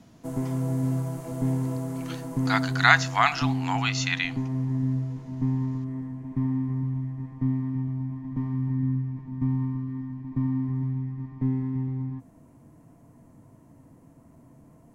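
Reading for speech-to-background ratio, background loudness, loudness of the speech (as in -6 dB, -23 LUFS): 5.5 dB, -29.5 LUFS, -24.0 LUFS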